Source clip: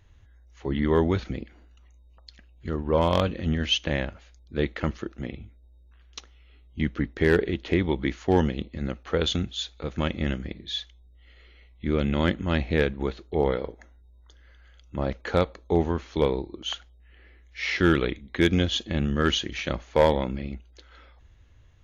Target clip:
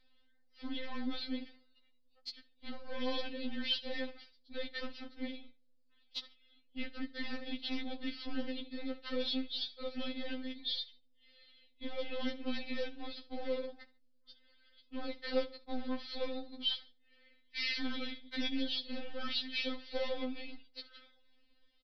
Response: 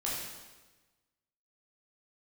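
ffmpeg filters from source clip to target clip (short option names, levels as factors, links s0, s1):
-af "aeval=exprs='if(lt(val(0),0),0.447*val(0),val(0))':c=same,bass=f=250:g=-11,treble=f=4000:g=3,acrusher=bits=7:mode=log:mix=0:aa=0.000001,aexciter=amount=1.4:drive=7.3:freq=3700,aresample=11025,asoftclip=type=tanh:threshold=0.0708,aresample=44100,equalizer=f=1000:w=0.73:g=-10.5,agate=range=0.282:threshold=0.00158:ratio=16:detection=peak,aecho=1:1:70|140:0.0794|0.0199,acompressor=threshold=0.00282:ratio=2,afftfilt=real='re*3.46*eq(mod(b,12),0)':imag='im*3.46*eq(mod(b,12),0)':win_size=2048:overlap=0.75,volume=3.76"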